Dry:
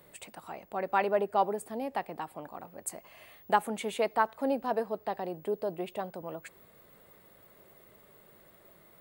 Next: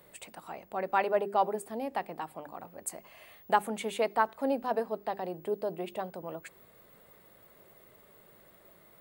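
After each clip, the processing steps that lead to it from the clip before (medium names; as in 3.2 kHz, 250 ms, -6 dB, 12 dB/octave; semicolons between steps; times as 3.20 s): hum notches 50/100/150/200/250/300/350/400 Hz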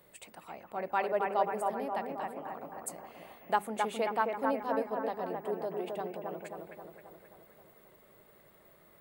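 bucket-brigade echo 266 ms, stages 4096, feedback 57%, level -3.5 dB; trim -3.5 dB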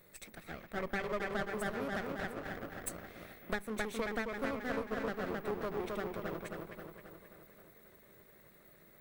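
comb filter that takes the minimum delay 0.5 ms; compression 10:1, threshold -33 dBFS, peak gain reduction 10 dB; trim +1 dB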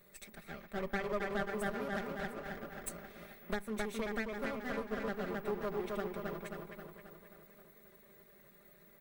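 comb 5 ms; trim -3 dB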